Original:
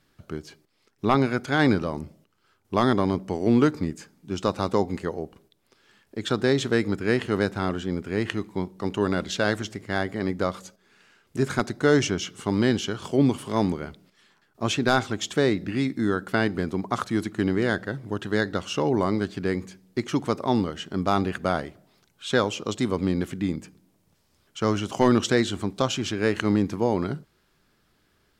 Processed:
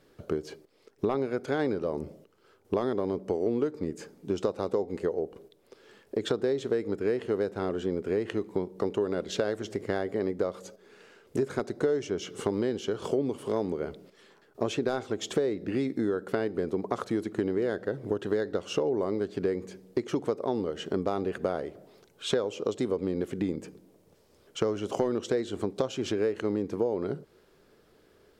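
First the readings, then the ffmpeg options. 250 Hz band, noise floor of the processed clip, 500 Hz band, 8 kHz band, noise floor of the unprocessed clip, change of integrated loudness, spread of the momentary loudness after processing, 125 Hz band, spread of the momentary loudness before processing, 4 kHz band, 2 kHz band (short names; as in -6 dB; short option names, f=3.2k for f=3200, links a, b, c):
-7.0 dB, -63 dBFS, -1.5 dB, -8.5 dB, -67 dBFS, -5.5 dB, 6 LU, -10.5 dB, 10 LU, -8.5 dB, -12.0 dB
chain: -af "equalizer=f=460:t=o:w=1.1:g=14.5,acompressor=threshold=-26dB:ratio=6"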